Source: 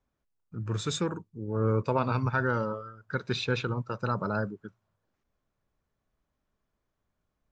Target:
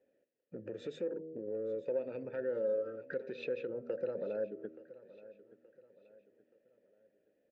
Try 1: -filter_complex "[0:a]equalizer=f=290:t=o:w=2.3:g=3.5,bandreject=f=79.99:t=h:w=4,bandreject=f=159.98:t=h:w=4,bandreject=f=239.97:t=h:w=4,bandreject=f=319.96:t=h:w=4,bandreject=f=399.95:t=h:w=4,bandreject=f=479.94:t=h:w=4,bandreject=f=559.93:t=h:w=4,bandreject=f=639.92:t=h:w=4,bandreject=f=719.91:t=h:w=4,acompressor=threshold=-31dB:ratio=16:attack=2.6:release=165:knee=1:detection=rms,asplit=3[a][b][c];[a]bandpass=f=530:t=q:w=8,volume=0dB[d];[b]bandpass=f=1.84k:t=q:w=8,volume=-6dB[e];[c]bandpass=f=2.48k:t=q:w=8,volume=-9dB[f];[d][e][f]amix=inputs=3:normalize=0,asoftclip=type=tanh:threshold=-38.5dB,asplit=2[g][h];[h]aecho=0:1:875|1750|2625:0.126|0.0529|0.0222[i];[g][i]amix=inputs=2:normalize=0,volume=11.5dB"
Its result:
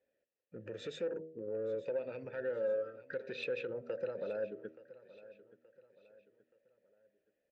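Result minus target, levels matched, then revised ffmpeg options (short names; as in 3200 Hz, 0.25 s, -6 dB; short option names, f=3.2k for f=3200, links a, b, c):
soft clip: distortion +10 dB; 250 Hz band -3.0 dB
-filter_complex "[0:a]equalizer=f=290:t=o:w=2.3:g=15,bandreject=f=79.99:t=h:w=4,bandreject=f=159.98:t=h:w=4,bandreject=f=239.97:t=h:w=4,bandreject=f=319.96:t=h:w=4,bandreject=f=399.95:t=h:w=4,bandreject=f=479.94:t=h:w=4,bandreject=f=559.93:t=h:w=4,bandreject=f=639.92:t=h:w=4,bandreject=f=719.91:t=h:w=4,acompressor=threshold=-31dB:ratio=16:attack=2.6:release=165:knee=1:detection=rms,asplit=3[a][b][c];[a]bandpass=f=530:t=q:w=8,volume=0dB[d];[b]bandpass=f=1.84k:t=q:w=8,volume=-6dB[e];[c]bandpass=f=2.48k:t=q:w=8,volume=-9dB[f];[d][e][f]amix=inputs=3:normalize=0,asoftclip=type=tanh:threshold=-32.5dB,asplit=2[g][h];[h]aecho=0:1:875|1750|2625:0.126|0.0529|0.0222[i];[g][i]amix=inputs=2:normalize=0,volume=11.5dB"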